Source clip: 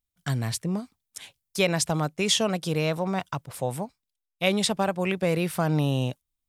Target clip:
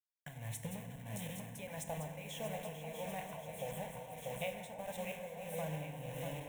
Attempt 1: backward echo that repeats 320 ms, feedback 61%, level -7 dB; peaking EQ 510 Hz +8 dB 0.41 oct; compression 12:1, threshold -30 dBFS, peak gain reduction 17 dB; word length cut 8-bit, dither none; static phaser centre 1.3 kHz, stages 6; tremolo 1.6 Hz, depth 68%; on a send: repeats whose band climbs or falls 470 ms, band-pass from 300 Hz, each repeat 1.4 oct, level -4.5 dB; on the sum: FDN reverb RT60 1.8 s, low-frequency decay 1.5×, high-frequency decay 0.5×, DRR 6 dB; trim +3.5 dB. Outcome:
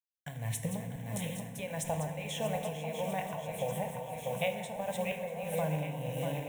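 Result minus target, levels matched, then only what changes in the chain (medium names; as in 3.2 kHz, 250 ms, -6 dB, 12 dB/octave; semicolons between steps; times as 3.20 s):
compression: peak gain reduction -8.5 dB
change: compression 12:1, threshold -39 dBFS, peak gain reduction 25.5 dB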